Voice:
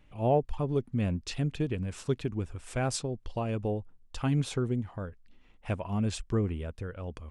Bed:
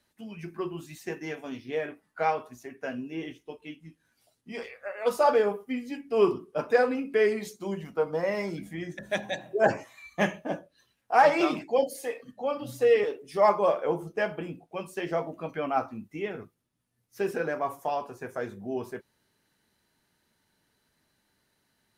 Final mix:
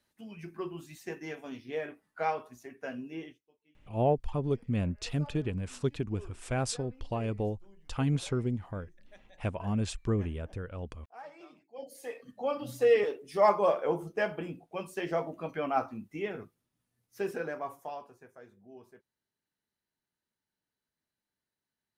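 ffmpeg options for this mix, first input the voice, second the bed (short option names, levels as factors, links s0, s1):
-filter_complex "[0:a]adelay=3750,volume=0.891[s0];[1:a]volume=11.9,afade=t=out:st=3.16:d=0.25:silence=0.0668344,afade=t=in:st=11.73:d=0.67:silence=0.0501187,afade=t=out:st=16.81:d=1.51:silence=0.141254[s1];[s0][s1]amix=inputs=2:normalize=0"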